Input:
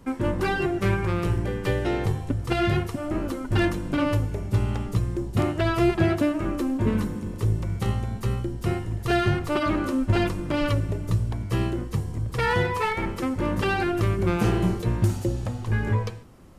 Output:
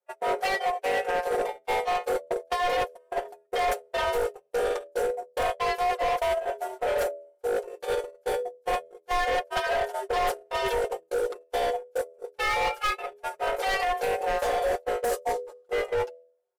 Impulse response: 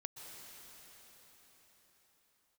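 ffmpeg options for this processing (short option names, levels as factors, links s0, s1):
-af "afreqshift=370,agate=range=0.00447:threshold=0.0708:ratio=16:detection=peak,highshelf=f=8100:g=9,aecho=1:1:5.6:0.8,bandreject=f=82.35:t=h:w=4,bandreject=f=164.7:t=h:w=4,bandreject=f=247.05:t=h:w=4,bandreject=f=329.4:t=h:w=4,bandreject=f=411.75:t=h:w=4,bandreject=f=494.1:t=h:w=4,bandreject=f=576.45:t=h:w=4,bandreject=f=658.8:t=h:w=4,areverse,acompressor=threshold=0.0355:ratio=6,areverse,volume=28.2,asoftclip=hard,volume=0.0355,asubboost=boost=7:cutoff=61,volume=2.37"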